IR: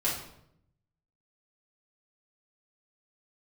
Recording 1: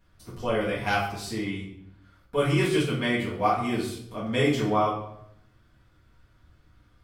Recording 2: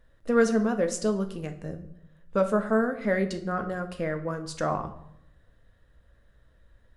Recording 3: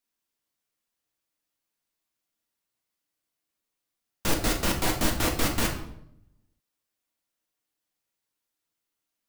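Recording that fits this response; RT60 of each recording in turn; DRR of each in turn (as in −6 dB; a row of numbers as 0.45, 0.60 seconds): 1; 0.75, 0.75, 0.75 seconds; −8.5, 6.0, 1.5 decibels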